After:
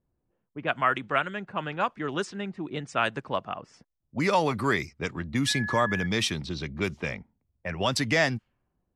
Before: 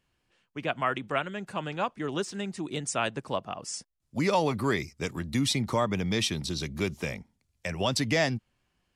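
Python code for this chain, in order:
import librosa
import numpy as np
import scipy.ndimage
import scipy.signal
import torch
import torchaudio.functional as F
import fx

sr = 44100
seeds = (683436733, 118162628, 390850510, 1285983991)

y = fx.dynamic_eq(x, sr, hz=1500.0, q=1.1, threshold_db=-43.0, ratio=4.0, max_db=6)
y = fx.env_lowpass(y, sr, base_hz=610.0, full_db=-23.0)
y = fx.dmg_tone(y, sr, hz=1700.0, level_db=-31.0, at=(5.46, 6.05), fade=0.02)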